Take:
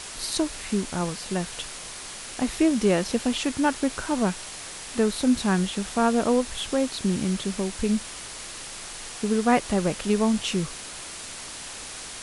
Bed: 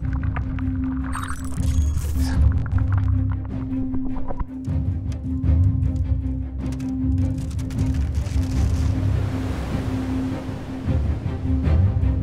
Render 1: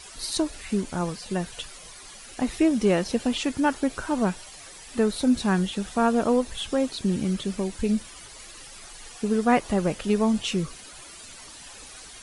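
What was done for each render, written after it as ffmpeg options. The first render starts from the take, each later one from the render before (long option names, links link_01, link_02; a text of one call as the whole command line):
ffmpeg -i in.wav -af "afftdn=noise_reduction=12:noise_floor=-39" out.wav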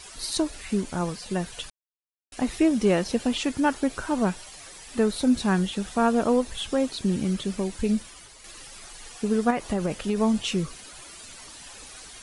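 ffmpeg -i in.wav -filter_complex "[0:a]asettb=1/sr,asplit=3[link_01][link_02][link_03];[link_01]atrim=end=9.504[link_04];[link_02]atrim=start=9.5:end=10.21,asetpts=PTS-STARTPTS,afade=type=in:duration=0.004:curve=qsin,afade=type=out:start_time=0.706:duration=0.004:curve=qsin,acompressor=threshold=-20dB:ratio=6:attack=3.2:release=140:knee=1:detection=peak[link_05];[link_03]atrim=start=10.206[link_06];[link_04][link_05]acrossfade=duration=0.004:curve1=hsin:curve2=qsin[link_07];[link_07][link_06]acrossfade=duration=0.004:curve1=qsin:curve2=hsin,asplit=4[link_08][link_09][link_10][link_11];[link_08]atrim=end=1.7,asetpts=PTS-STARTPTS,afade=type=out:start_time=1.696:duration=0.004:curve=hsin[link_12];[link_09]atrim=start=1.7:end=2.32,asetpts=PTS-STARTPTS,volume=0[link_13];[link_10]atrim=start=2.32:end=8.44,asetpts=PTS-STARTPTS,afade=type=in:duration=0.004:curve=hsin,afade=type=out:start_time=5.61:duration=0.51:silence=0.473151[link_14];[link_11]atrim=start=8.44,asetpts=PTS-STARTPTS,afade=type=in:duration=0.004:curve=hsin:silence=0.473151[link_15];[link_12][link_13][link_14][link_15]concat=n=4:v=0:a=1" out.wav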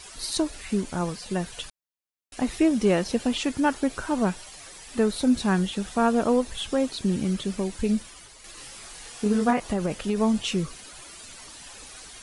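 ffmpeg -i in.wav -filter_complex "[0:a]asettb=1/sr,asplit=3[link_01][link_02][link_03];[link_01]atrim=end=8.554[link_04];[link_02]atrim=start=8.55:end=9.6,asetpts=PTS-STARTPTS,afade=type=in:duration=0.004:curve=qsin,afade=type=out:start_time=1.046:duration=0.004:curve=qsin,asplit=2[link_05][link_06];[link_06]adelay=24,volume=-3.5dB[link_07];[link_05][link_07]amix=inputs=2:normalize=0,atrim=end_sample=46305[link_08];[link_03]atrim=start=9.596[link_09];[link_04][link_08]acrossfade=duration=0.004:curve1=hsin:curve2=qsin[link_10];[link_10][link_09]acrossfade=duration=0.004:curve1=qsin:curve2=hsin" out.wav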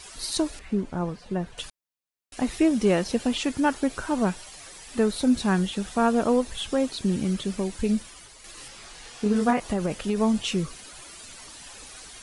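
ffmpeg -i in.wav -filter_complex "[0:a]asettb=1/sr,asplit=3[link_01][link_02][link_03];[link_01]atrim=end=0.594[link_04];[link_02]atrim=start=0.59:end=1.58,asetpts=PTS-STARTPTS,afade=type=in:duration=0.004:curve=qsin,afade=type=out:start_time=0.986:duration=0.004:curve=qsin,lowpass=frequency=1100:poles=1[link_05];[link_03]atrim=start=1.576[link_06];[link_04][link_05]acrossfade=duration=0.004:curve1=hsin:curve2=qsin[link_07];[link_07][link_06]acrossfade=duration=0.004:curve1=qsin:curve2=hsin,asettb=1/sr,asplit=3[link_08][link_09][link_10];[link_08]atrim=end=8.684[link_11];[link_09]atrim=start=8.68:end=9.36,asetpts=PTS-STARTPTS,afade=type=in:duration=0.004:curve=qsin,afade=type=out:start_time=0.676:duration=0.004:curve=qsin,acrossover=split=6800[link_12][link_13];[link_13]acompressor=threshold=-54dB:ratio=4:attack=1:release=60[link_14];[link_12][link_14]amix=inputs=2:normalize=0[link_15];[link_10]atrim=start=9.356[link_16];[link_11][link_15]acrossfade=duration=0.004:curve1=hsin:curve2=qsin[link_17];[link_17][link_16]acrossfade=duration=0.004:curve1=qsin:curve2=hsin" out.wav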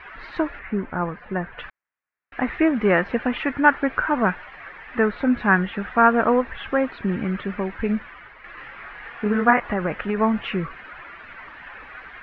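ffmpeg -i in.wav -af "lowpass=frequency=2200:width=0.5412,lowpass=frequency=2200:width=1.3066,equalizer=frequency=1700:width=0.71:gain=14.5" out.wav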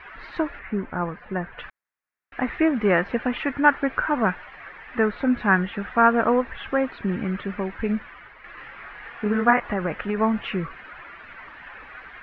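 ffmpeg -i in.wav -af "volume=-1.5dB" out.wav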